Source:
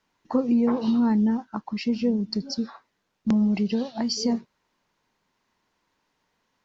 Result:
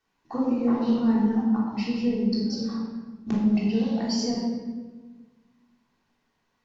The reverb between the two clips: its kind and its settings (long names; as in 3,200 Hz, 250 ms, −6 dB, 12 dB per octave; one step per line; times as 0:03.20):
rectangular room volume 1,100 cubic metres, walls mixed, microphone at 3.5 metres
level −7.5 dB